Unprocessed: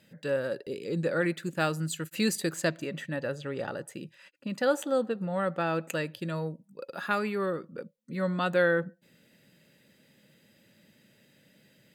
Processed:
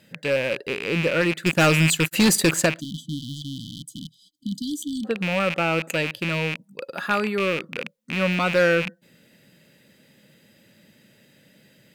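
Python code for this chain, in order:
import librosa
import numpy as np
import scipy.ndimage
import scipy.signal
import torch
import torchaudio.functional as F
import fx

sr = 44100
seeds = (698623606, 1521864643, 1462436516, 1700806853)

y = fx.rattle_buzz(x, sr, strikes_db=-44.0, level_db=-22.0)
y = fx.leveller(y, sr, passes=2, at=(1.46, 2.66))
y = np.clip(10.0 ** (19.0 / 20.0) * y, -1.0, 1.0) / 10.0 ** (19.0 / 20.0)
y = fx.spec_erase(y, sr, start_s=2.8, length_s=2.24, low_hz=320.0, high_hz=3000.0)
y = y * librosa.db_to_amplitude(6.0)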